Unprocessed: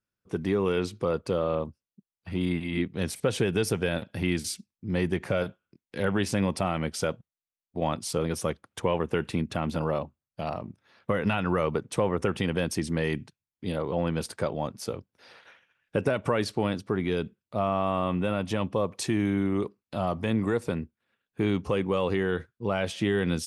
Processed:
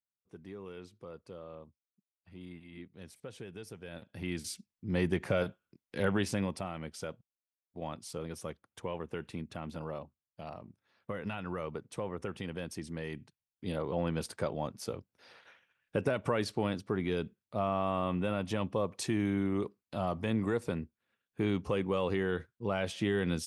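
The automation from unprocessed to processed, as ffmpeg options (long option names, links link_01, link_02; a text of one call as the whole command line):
ffmpeg -i in.wav -af "volume=4dB,afade=type=in:start_time=3.83:duration=0.46:silence=0.316228,afade=type=in:start_time=4.29:duration=0.77:silence=0.446684,afade=type=out:start_time=6.07:duration=0.61:silence=0.354813,afade=type=in:start_time=13.15:duration=0.58:silence=0.446684" out.wav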